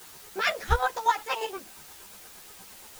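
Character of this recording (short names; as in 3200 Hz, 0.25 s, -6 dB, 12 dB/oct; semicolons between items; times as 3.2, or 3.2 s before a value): chopped level 8.5 Hz, depth 65%, duty 35%; a quantiser's noise floor 8-bit, dither triangular; a shimmering, thickened sound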